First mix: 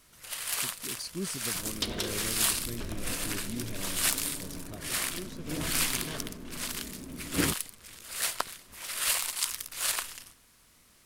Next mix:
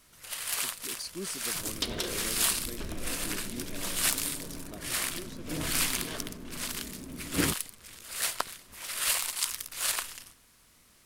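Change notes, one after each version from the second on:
speech: add high-pass filter 260 Hz 12 dB per octave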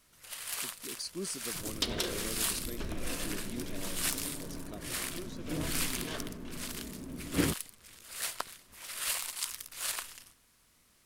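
first sound −5.5 dB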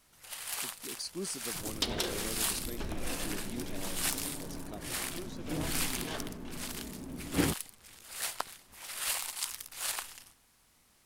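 master: add parametric band 810 Hz +8 dB 0.27 octaves

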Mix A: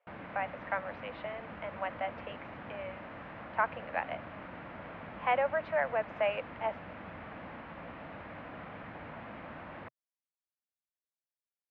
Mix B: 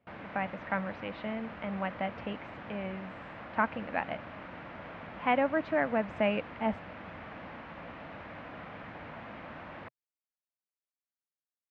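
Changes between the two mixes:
speech: remove Butterworth high-pass 480 Hz 48 dB per octave
master: remove high-frequency loss of the air 160 metres

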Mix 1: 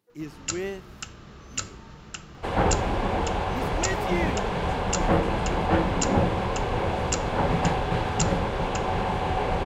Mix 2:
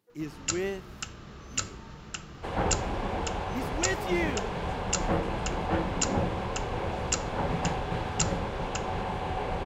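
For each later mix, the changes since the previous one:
second sound −6.0 dB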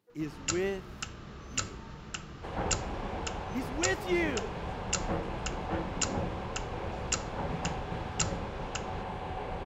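second sound −5.5 dB
master: add high-shelf EQ 5,600 Hz −4.5 dB

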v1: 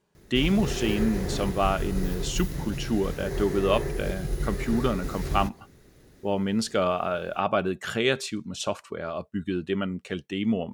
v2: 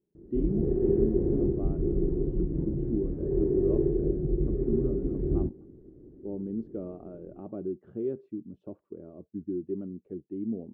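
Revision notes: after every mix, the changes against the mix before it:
speech −12.0 dB
master: add low-pass with resonance 340 Hz, resonance Q 3.5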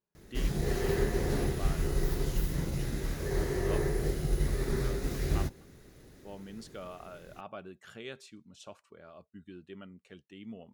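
speech −7.5 dB
master: remove low-pass with resonance 340 Hz, resonance Q 3.5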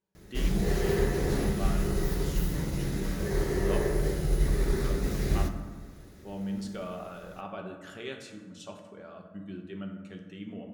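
reverb: on, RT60 1.5 s

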